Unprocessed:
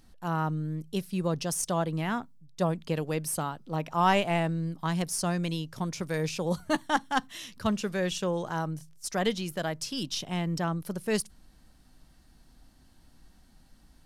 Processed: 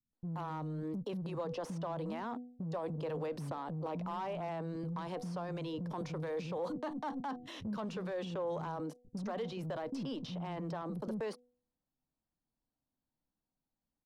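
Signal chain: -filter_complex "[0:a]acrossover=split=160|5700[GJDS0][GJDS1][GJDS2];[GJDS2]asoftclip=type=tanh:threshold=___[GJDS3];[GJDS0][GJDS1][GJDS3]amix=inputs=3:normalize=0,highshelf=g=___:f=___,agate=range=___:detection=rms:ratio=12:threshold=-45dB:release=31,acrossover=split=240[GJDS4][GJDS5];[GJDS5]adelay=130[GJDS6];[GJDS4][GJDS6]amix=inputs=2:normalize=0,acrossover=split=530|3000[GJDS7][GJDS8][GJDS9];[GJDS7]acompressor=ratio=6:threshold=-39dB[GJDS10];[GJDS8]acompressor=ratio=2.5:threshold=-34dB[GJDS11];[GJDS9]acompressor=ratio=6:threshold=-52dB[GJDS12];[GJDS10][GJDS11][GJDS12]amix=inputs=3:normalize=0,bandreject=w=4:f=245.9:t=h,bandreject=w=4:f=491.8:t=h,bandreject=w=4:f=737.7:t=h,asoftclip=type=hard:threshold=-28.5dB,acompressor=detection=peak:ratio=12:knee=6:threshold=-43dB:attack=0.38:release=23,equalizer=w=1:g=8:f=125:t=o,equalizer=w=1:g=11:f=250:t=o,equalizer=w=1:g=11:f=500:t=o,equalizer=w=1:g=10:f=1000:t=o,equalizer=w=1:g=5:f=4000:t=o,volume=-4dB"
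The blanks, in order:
-35.5dB, -9, 9300, -35dB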